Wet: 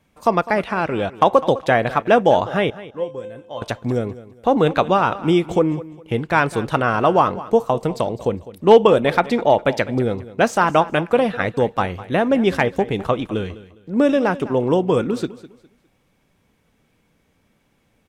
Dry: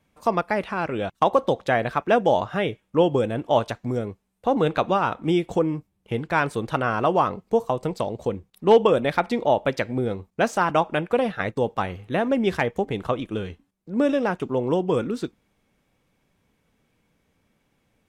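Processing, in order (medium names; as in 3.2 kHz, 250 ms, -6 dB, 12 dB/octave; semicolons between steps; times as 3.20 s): 2.70–3.62 s: feedback comb 520 Hz, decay 0.37 s, mix 90%; feedback delay 204 ms, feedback 28%, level -17 dB; trim +5 dB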